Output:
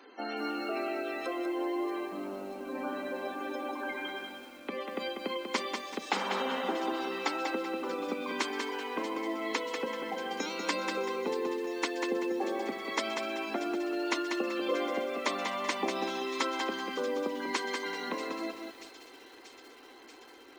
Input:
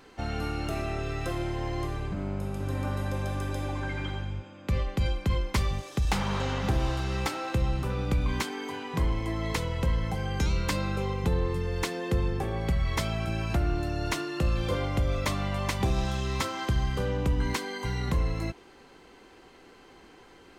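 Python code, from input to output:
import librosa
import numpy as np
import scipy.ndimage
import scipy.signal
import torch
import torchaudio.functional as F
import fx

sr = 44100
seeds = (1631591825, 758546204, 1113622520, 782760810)

y = scipy.signal.sosfilt(scipy.signal.butter(8, 240.0, 'highpass', fs=sr, output='sos'), x)
y = fx.spec_gate(y, sr, threshold_db=-20, keep='strong')
y = fx.echo_wet_highpass(y, sr, ms=635, feedback_pct=74, hz=2900.0, wet_db=-12.0)
y = fx.echo_crushed(y, sr, ms=192, feedback_pct=35, bits=9, wet_db=-5.5)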